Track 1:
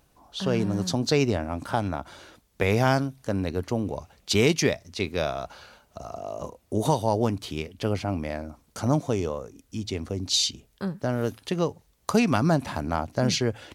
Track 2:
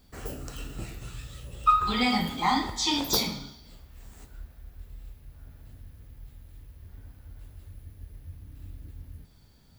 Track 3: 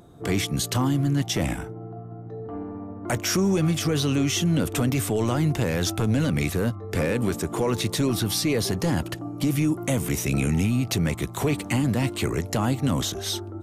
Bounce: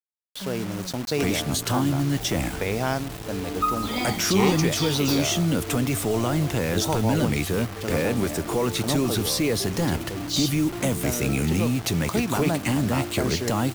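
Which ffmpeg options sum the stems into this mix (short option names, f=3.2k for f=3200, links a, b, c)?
-filter_complex "[0:a]volume=-3.5dB[a];[1:a]adelay=1950,volume=-3.5dB[b];[2:a]acontrast=55,adelay=950,volume=-5.5dB[c];[a][b][c]amix=inputs=3:normalize=0,equalizer=f=120:w=1.2:g=-2.5,acrusher=bits=5:mix=0:aa=0.000001"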